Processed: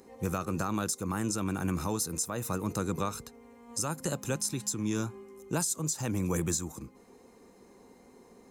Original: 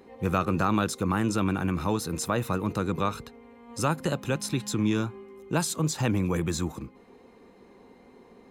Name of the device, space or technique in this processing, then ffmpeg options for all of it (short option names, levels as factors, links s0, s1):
over-bright horn tweeter: -af "highshelf=f=4700:t=q:w=1.5:g=10.5,alimiter=limit=0.15:level=0:latency=1:release=402,volume=0.708"